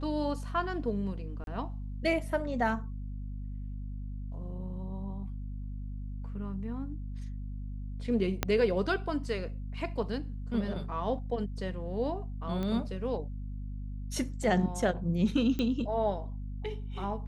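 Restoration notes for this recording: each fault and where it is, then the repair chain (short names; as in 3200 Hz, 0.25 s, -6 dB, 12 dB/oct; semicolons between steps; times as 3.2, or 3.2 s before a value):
hum 50 Hz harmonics 5 -38 dBFS
1.44–1.47 gap 32 ms
8.43 pop -11 dBFS
12.63 pop -23 dBFS
15.59 pop -20 dBFS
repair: de-click; de-hum 50 Hz, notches 5; interpolate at 1.44, 32 ms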